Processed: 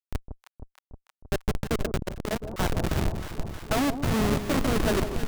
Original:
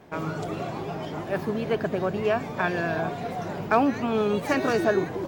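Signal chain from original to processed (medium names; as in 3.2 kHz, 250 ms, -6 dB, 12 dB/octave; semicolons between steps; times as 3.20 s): spectral gate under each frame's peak -25 dB strong; Schmitt trigger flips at -21.5 dBFS; on a send: echo whose repeats swap between lows and highs 157 ms, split 920 Hz, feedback 83%, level -9 dB; 1.97–2.53 s: on the sum: transformer saturation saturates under 230 Hz; trim +3 dB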